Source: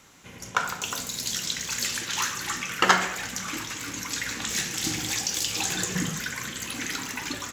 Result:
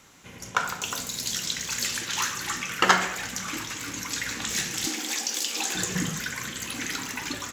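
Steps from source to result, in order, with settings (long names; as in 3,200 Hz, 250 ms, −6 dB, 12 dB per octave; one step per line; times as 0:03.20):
0:04.86–0:05.75: Chebyshev high-pass filter 230 Hz, order 4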